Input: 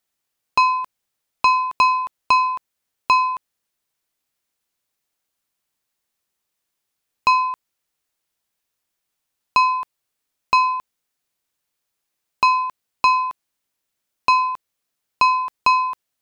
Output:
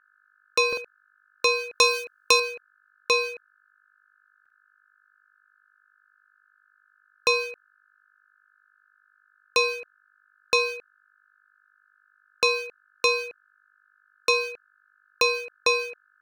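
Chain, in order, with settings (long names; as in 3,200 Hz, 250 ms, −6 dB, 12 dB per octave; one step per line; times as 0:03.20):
adaptive Wiener filter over 25 samples
0:01.75–0:02.40: high-shelf EQ 3,700 Hz +12 dB
mains hum 50 Hz, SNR 20 dB
spectral tilt +3.5 dB per octave
ring modulation 1,500 Hz
buffer that repeats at 0:00.68/0:04.41, samples 2,048, times 1
level −4 dB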